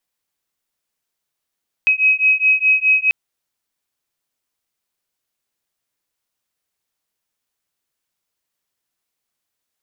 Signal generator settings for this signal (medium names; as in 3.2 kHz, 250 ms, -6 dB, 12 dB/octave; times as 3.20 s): beating tones 2.54 kHz, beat 4.8 Hz, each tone -15 dBFS 1.24 s